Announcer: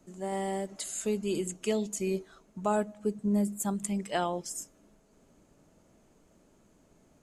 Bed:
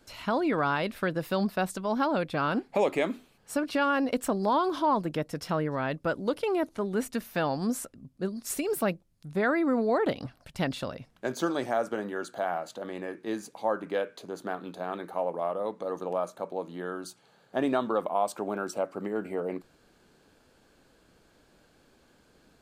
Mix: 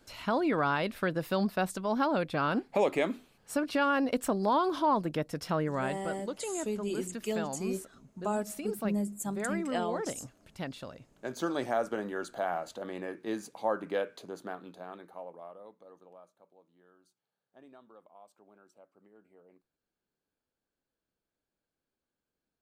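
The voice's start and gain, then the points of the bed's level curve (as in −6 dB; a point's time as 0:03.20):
5.60 s, −4.0 dB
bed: 0:05.80 −1.5 dB
0:06.07 −9 dB
0:11.06 −9 dB
0:11.60 −2 dB
0:14.13 −2 dB
0:16.56 −28.5 dB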